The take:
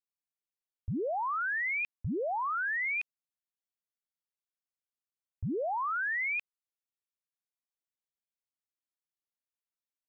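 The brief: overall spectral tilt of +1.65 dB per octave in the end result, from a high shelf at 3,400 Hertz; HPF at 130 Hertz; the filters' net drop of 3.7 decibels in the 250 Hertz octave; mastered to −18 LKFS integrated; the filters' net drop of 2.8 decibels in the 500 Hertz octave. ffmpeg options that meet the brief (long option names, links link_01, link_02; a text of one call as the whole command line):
ffmpeg -i in.wav -af "highpass=130,equalizer=frequency=250:width_type=o:gain=-3.5,equalizer=frequency=500:width_type=o:gain=-3,highshelf=frequency=3400:gain=9,volume=12.5dB" out.wav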